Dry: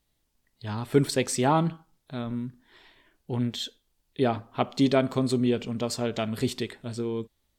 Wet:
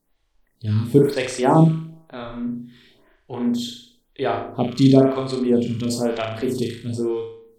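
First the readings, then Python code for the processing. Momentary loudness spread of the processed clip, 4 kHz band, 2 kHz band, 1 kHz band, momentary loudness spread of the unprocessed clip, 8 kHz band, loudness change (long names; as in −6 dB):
17 LU, +2.0 dB, +3.0 dB, +4.5 dB, 13 LU, 0.0 dB, +7.0 dB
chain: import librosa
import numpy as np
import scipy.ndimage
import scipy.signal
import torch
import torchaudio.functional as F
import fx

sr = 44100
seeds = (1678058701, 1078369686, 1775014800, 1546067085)

p1 = fx.low_shelf(x, sr, hz=380.0, db=5.5)
p2 = p1 + fx.room_flutter(p1, sr, wall_m=6.4, rt60_s=0.57, dry=0)
p3 = fx.stagger_phaser(p2, sr, hz=1.0)
y = F.gain(torch.from_numpy(p3), 4.0).numpy()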